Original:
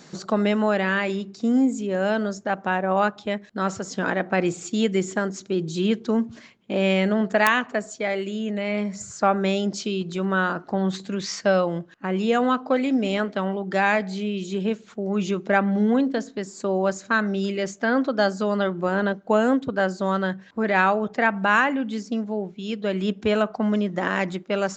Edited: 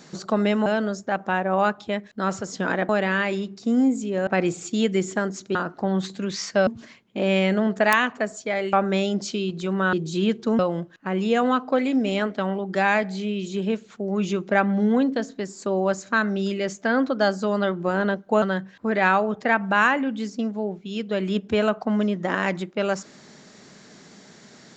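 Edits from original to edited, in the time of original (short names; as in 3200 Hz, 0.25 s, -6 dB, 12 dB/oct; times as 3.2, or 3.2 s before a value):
0.66–2.04 move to 4.27
5.55–6.21 swap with 10.45–11.57
8.27–9.25 cut
19.4–20.15 cut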